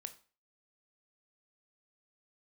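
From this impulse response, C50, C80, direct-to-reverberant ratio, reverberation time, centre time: 14.5 dB, 19.5 dB, 9.0 dB, 0.40 s, 5 ms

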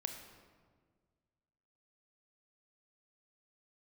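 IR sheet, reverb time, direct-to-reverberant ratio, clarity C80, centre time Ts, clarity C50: 1.7 s, 5.0 dB, 8.0 dB, 32 ms, 6.5 dB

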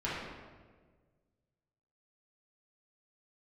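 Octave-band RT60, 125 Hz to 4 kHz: 2.1, 1.8, 1.7, 1.3, 1.2, 0.95 seconds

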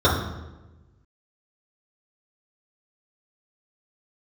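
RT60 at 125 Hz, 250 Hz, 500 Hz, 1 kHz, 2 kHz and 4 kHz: 1.6, 1.4, 1.2, 1.0, 0.90, 0.75 seconds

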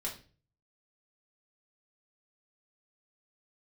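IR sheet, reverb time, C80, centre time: 0.40 s, 15.0 dB, 20 ms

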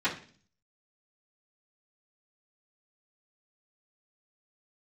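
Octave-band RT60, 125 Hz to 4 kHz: 0.70, 0.65, 0.50, 0.40, 0.45, 0.50 seconds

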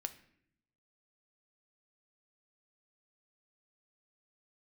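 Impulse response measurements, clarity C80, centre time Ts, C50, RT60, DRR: 17.5 dB, 6 ms, 14.5 dB, 0.70 s, 8.5 dB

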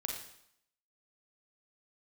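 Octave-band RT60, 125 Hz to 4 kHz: 0.65, 0.70, 0.70, 0.75, 0.70, 0.70 seconds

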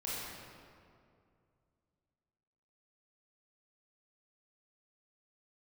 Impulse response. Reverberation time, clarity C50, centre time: 2.4 s, −4.0 dB, 151 ms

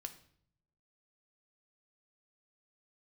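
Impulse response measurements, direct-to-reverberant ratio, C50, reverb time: 6.0 dB, 13.0 dB, 0.60 s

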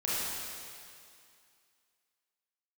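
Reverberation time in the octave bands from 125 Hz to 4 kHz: 2.1, 2.3, 2.2, 2.4, 2.4, 2.3 seconds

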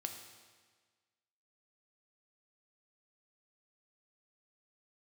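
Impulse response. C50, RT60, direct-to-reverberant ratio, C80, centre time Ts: 6.5 dB, 1.5 s, 4.0 dB, 8.0 dB, 31 ms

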